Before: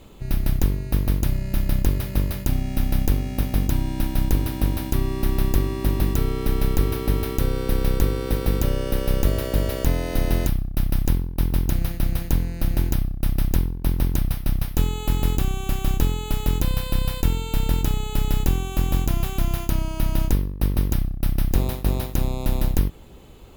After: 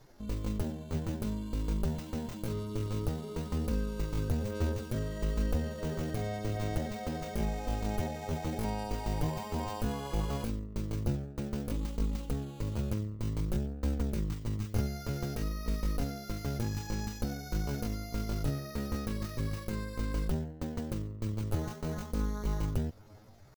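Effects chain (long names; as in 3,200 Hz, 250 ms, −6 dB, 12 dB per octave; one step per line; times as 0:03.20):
multi-voice chorus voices 2, 0.54 Hz, delay 11 ms, depth 4.7 ms
pitch shifter +8.5 semitones
level −8.5 dB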